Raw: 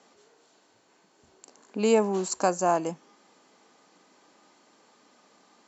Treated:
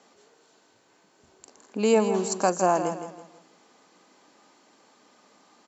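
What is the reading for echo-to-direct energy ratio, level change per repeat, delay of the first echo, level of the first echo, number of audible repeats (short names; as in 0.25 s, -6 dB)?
-9.0 dB, -9.0 dB, 0.163 s, -9.5 dB, 3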